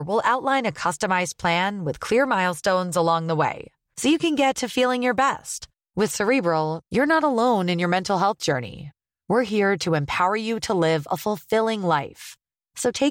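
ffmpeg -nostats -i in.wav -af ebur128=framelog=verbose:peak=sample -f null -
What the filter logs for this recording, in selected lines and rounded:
Integrated loudness:
  I:         -22.3 LUFS
  Threshold: -32.8 LUFS
Loudness range:
  LRA:         1.4 LU
  Threshold: -42.6 LUFS
  LRA low:   -23.4 LUFS
  LRA high:  -22.0 LUFS
Sample peak:
  Peak:       -7.0 dBFS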